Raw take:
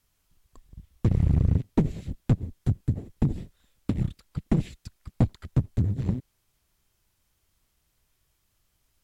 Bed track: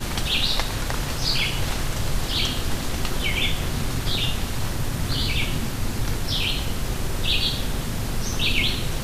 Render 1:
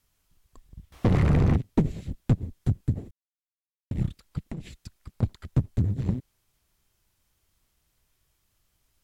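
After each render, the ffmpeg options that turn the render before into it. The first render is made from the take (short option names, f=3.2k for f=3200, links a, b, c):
-filter_complex "[0:a]asettb=1/sr,asplit=3[a][b][c];[a]atrim=end=0.924[d];[b]atrim=start=0.92:end=1.56,asetpts=PTS-STARTPTS,afade=t=in:d=0.004:c=qsin,afade=t=out:st=0.636:d=0.004:c=qsin,asplit=2[e][f];[f]highpass=f=720:p=1,volume=37dB,asoftclip=type=tanh:threshold=-13dB[g];[e][g]amix=inputs=2:normalize=0,lowpass=f=1.1k:p=1,volume=-6dB[h];[c]atrim=start=1.556[i];[d][h]acrossfade=d=0.004:c1=hsin:c2=qsin[j];[j][i]acrossfade=d=0.004:c1=qsin:c2=hsin,asettb=1/sr,asplit=3[k][l][m];[k]atrim=end=4.474[n];[l]atrim=start=4.47:end=5.23,asetpts=PTS-STARTPTS,afade=t=in:d=0.004:c=qsin,afade=t=out:st=0.756:d=0.004:c=qsin,acompressor=threshold=-32dB:ratio=8:attack=3.2:release=140:knee=1:detection=peak[o];[m]atrim=start=5.226[p];[n][o]acrossfade=d=0.004:c1=hsin:c2=qsin[q];[q][p]acrossfade=d=0.004:c1=qsin:c2=hsin,asplit=3[r][s][t];[r]atrim=end=3.11,asetpts=PTS-STARTPTS,afade=t=out:st=3.106:d=0.004:c=hsin[u];[s]atrim=start=3.11:end=3.91,asetpts=PTS-STARTPTS,volume=0[v];[t]atrim=start=3.91,asetpts=PTS-STARTPTS,afade=t=in:d=0.004:c=hsin[w];[u][v][w]concat=n=3:v=0:a=1"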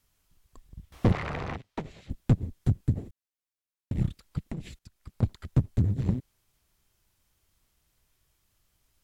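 -filter_complex "[0:a]asettb=1/sr,asplit=3[a][b][c];[a]atrim=end=1.124[d];[b]atrim=start=1.12:end=2.1,asetpts=PTS-STARTPTS,afade=t=in:d=0.004:c=qsin,afade=t=out:st=0.976:d=0.004:c=qsin,acrossover=split=570 5800:gain=0.141 1 0.224[e][f][g];[e][f][g]amix=inputs=3:normalize=0[h];[c]atrim=start=2.096[i];[d][h]acrossfade=d=0.004:c1=hsin:c2=qsin[j];[j][i]acrossfade=d=0.004:c1=qsin:c2=hsin,asplit=2[k][l];[k]atrim=end=4.79,asetpts=PTS-STARTPTS,afade=t=out:st=4.786:d=0.004:c=hsin:silence=0.211349[m];[l]atrim=start=4.79,asetpts=PTS-STARTPTS,afade=t=in:d=0.55:c=qsin:silence=0.211349[n];[m][n]concat=n=2:v=0:a=1"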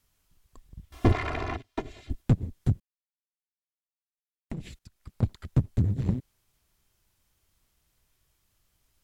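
-filter_complex "[0:a]asettb=1/sr,asplit=3[a][b][c];[a]atrim=end=0.904[d];[b]atrim=start=0.9:end=2.22,asetpts=PTS-STARTPTS,afade=t=in:d=0.004:c=qsin,afade=t=out:st=1.316:d=0.004:c=qsin,aecho=1:1:2.9:0.96,atrim=end_sample=58212[e];[c]atrim=start=2.216[f];[d][e]acrossfade=d=0.004:c1=hsin:c2=qsin[g];[g][f]acrossfade=d=0.004:c1=qsin:c2=hsin,asplit=3[h][i][j];[h]atrim=end=2.8,asetpts=PTS-STARTPTS,afade=t=out:st=2.796:d=0.004:c=hsin[k];[i]atrim=start=2.8:end=4.5,asetpts=PTS-STARTPTS,volume=0[l];[j]atrim=start=4.5,asetpts=PTS-STARTPTS,afade=t=in:d=0.004:c=hsin[m];[k][l][m]concat=n=3:v=0:a=1"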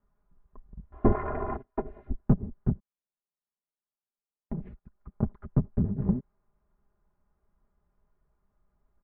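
-af "lowpass=f=1.3k:w=0.5412,lowpass=f=1.3k:w=1.3066,aecho=1:1:4.9:0.65"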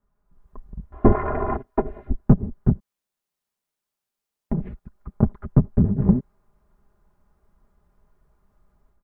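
-af "dynaudnorm=f=240:g=3:m=10dB"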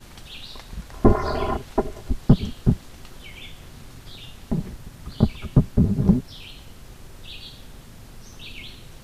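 -filter_complex "[1:a]volume=-17dB[a];[0:a][a]amix=inputs=2:normalize=0"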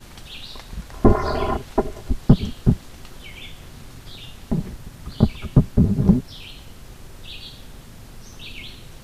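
-af "volume=2dB,alimiter=limit=-1dB:level=0:latency=1"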